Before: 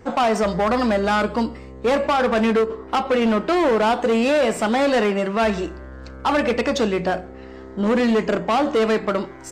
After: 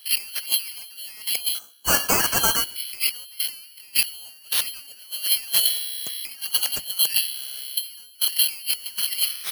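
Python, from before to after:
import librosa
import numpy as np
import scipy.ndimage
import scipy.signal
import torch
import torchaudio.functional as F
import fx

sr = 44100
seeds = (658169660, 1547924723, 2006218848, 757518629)

y = fx.band_swap(x, sr, width_hz=4000)
y = scipy.signal.sosfilt(scipy.signal.butter(2, 160.0, 'highpass', fs=sr, output='sos'), y)
y = fx.bass_treble(y, sr, bass_db=2, treble_db=-7)
y = fx.spec_box(y, sr, start_s=1.59, length_s=1.17, low_hz=1600.0, high_hz=5600.0, gain_db=-17)
y = fx.high_shelf(y, sr, hz=5200.0, db=-3.5)
y = fx.over_compress(y, sr, threshold_db=-32.0, ratio=-0.5)
y = (np.kron(y[::6], np.eye(6)[0]) * 6)[:len(y)]
y = fx.band_widen(y, sr, depth_pct=100)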